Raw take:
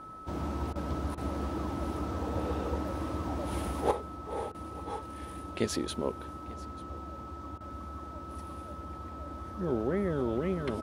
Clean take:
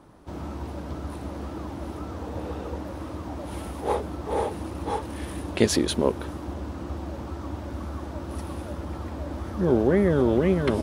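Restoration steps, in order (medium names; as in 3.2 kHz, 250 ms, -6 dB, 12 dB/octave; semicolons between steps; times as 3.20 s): band-stop 1.3 kHz, Q 30; interpolate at 0.73/1.15/4.52/7.58 s, 24 ms; inverse comb 890 ms -20.5 dB; gain correction +10 dB, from 3.91 s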